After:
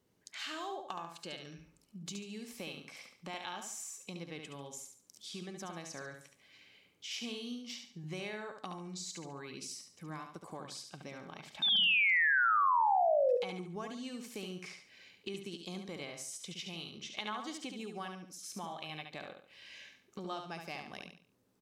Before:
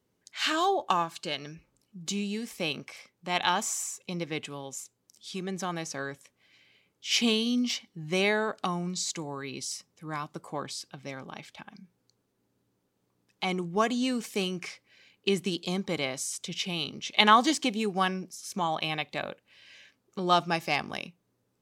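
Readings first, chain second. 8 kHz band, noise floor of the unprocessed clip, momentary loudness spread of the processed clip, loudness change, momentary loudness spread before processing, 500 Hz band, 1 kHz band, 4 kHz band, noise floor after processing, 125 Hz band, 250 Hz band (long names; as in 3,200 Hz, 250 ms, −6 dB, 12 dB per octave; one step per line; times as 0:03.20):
−10.0 dB, −76 dBFS, 21 LU, −6.0 dB, 16 LU, −6.0 dB, −6.0 dB, −5.5 dB, −70 dBFS, −11.0 dB, −13.5 dB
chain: downward compressor 3 to 1, threshold −46 dBFS, peak gain reduction 23 dB
sound drawn into the spectrogram fall, 0:11.62–0:13.37, 470–3,700 Hz −29 dBFS
repeating echo 71 ms, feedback 35%, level −6 dB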